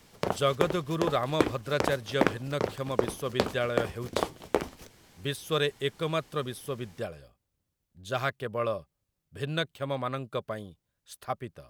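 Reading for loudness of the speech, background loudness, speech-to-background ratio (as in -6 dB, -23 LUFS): -32.5 LUFS, -32.5 LUFS, 0.0 dB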